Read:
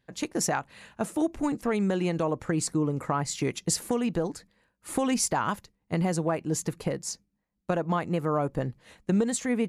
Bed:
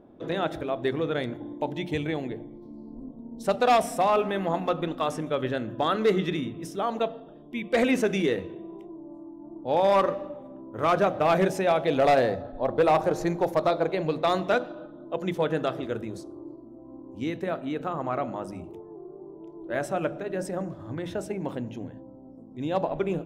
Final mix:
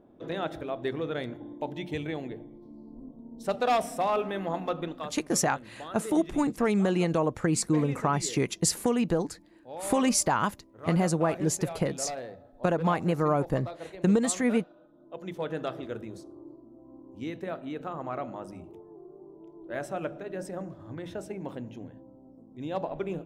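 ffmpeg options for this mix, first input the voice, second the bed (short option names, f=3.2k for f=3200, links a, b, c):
-filter_complex "[0:a]adelay=4950,volume=1.5dB[a];[1:a]volume=6.5dB,afade=t=out:st=4.84:d=0.31:silence=0.251189,afade=t=in:st=14.85:d=0.83:silence=0.281838[b];[a][b]amix=inputs=2:normalize=0"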